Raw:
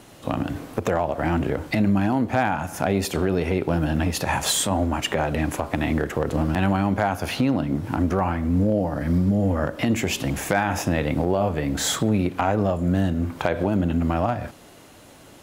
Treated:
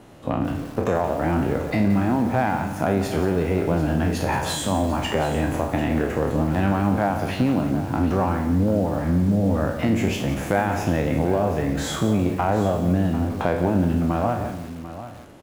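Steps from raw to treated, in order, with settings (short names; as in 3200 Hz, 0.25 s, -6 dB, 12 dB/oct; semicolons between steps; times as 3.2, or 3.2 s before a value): spectral trails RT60 0.53 s; high shelf 2200 Hz -11 dB; echo 0.743 s -13.5 dB; lo-fi delay 0.174 s, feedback 35%, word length 6-bit, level -10.5 dB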